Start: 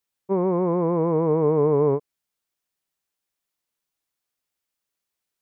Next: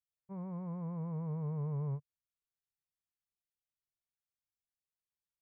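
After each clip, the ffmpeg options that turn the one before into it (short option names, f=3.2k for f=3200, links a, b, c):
-af "firequalizer=gain_entry='entry(140,0);entry(300,-30);entry(570,-18);entry(1600,-14)':delay=0.05:min_phase=1,volume=-6.5dB"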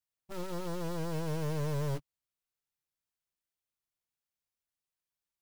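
-af "acrusher=bits=4:mode=log:mix=0:aa=0.000001,aeval=exprs='0.0316*(cos(1*acos(clip(val(0)/0.0316,-1,1)))-cos(1*PI/2))+0.00891*(cos(4*acos(clip(val(0)/0.0316,-1,1)))-cos(4*PI/2))+0.00355*(cos(6*acos(clip(val(0)/0.0316,-1,1)))-cos(6*PI/2))+0.01*(cos(7*acos(clip(val(0)/0.0316,-1,1)))-cos(7*PI/2))+0.00708*(cos(8*acos(clip(val(0)/0.0316,-1,1)))-cos(8*PI/2))':c=same"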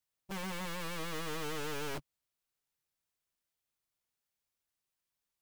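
-af "aeval=exprs='(mod(66.8*val(0)+1,2)-1)/66.8':c=same,volume=3dB"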